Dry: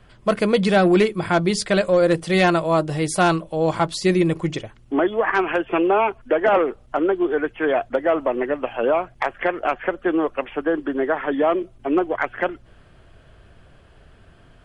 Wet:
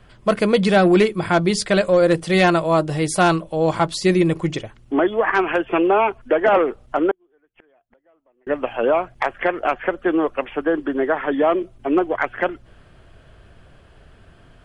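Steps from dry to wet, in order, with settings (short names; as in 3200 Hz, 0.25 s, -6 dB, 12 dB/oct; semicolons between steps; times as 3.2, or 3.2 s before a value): 7.11–8.47 flipped gate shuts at -25 dBFS, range -41 dB; gain +1.5 dB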